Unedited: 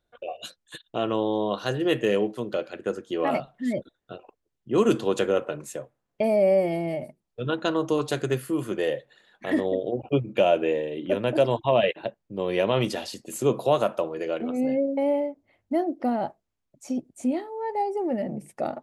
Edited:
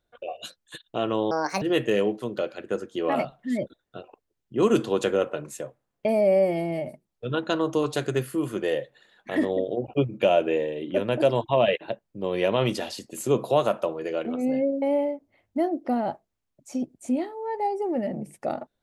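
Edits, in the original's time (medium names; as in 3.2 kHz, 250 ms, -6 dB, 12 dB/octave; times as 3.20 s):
1.31–1.77 s: speed 150%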